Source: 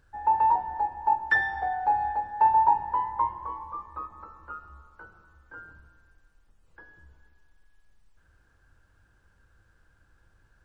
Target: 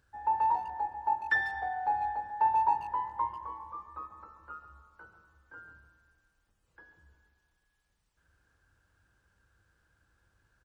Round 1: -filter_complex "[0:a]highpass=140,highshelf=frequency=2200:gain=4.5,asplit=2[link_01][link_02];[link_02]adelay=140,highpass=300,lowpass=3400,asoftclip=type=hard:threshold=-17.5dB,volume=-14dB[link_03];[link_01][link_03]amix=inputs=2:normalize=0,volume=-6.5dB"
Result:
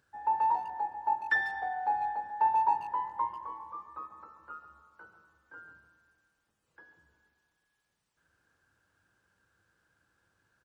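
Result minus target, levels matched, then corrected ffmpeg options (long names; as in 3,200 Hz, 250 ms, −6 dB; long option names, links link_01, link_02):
125 Hz band −7.0 dB
-filter_complex "[0:a]highpass=45,highshelf=frequency=2200:gain=4.5,asplit=2[link_01][link_02];[link_02]adelay=140,highpass=300,lowpass=3400,asoftclip=type=hard:threshold=-17.5dB,volume=-14dB[link_03];[link_01][link_03]amix=inputs=2:normalize=0,volume=-6.5dB"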